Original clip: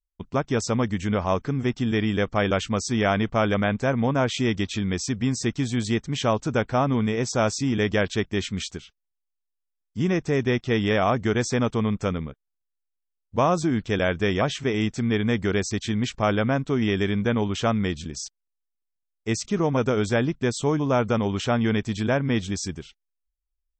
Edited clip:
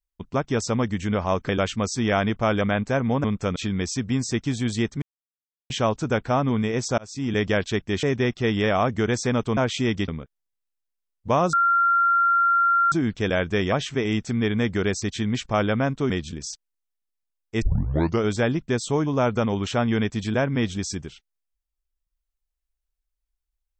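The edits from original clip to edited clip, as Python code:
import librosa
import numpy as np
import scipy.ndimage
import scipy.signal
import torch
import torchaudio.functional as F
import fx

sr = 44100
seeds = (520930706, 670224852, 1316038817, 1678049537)

y = fx.edit(x, sr, fx.cut(start_s=1.49, length_s=0.93),
    fx.swap(start_s=4.17, length_s=0.51, other_s=11.84, other_length_s=0.32),
    fx.insert_silence(at_s=6.14, length_s=0.68),
    fx.fade_in_span(start_s=7.42, length_s=0.38),
    fx.cut(start_s=8.47, length_s=1.83),
    fx.insert_tone(at_s=13.61, length_s=1.39, hz=1380.0, db=-16.0),
    fx.cut(start_s=16.79, length_s=1.04),
    fx.tape_start(start_s=19.35, length_s=0.61), tone=tone)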